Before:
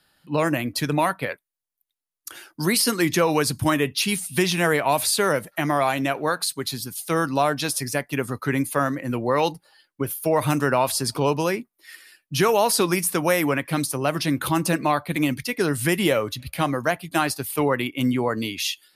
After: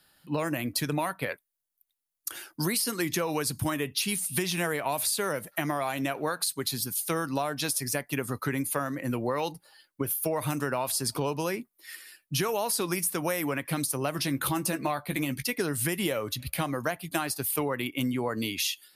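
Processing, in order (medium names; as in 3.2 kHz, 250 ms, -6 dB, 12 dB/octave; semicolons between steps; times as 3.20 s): treble shelf 9 kHz +8.5 dB; compression, threshold -24 dBFS, peak gain reduction 10 dB; 14.17–15.43 s: doubling 15 ms -10 dB; trim -1.5 dB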